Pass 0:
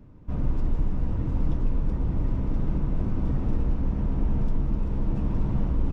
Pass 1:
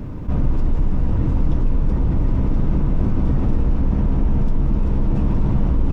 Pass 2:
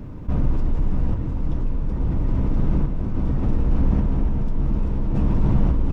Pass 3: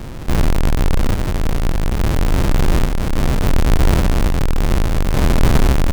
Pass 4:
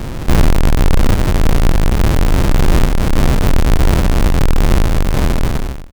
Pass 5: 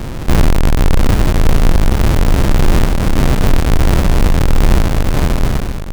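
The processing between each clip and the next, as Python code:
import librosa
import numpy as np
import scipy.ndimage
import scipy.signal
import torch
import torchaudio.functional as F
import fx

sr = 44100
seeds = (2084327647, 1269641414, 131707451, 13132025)

y1 = fx.env_flatten(x, sr, amount_pct=50)
y1 = y1 * 10.0 ** (5.0 / 20.0)
y2 = fx.tremolo_random(y1, sr, seeds[0], hz=3.5, depth_pct=55)
y3 = fx.halfwave_hold(y2, sr)
y3 = y3 * 10.0 ** (1.0 / 20.0)
y4 = fx.fade_out_tail(y3, sr, length_s=1.49)
y4 = fx.rider(y4, sr, range_db=3, speed_s=0.5)
y4 = y4 * 10.0 ** (4.5 / 20.0)
y5 = y4 + 10.0 ** (-9.5 / 20.0) * np.pad(y4, (int(816 * sr / 1000.0), 0))[:len(y4)]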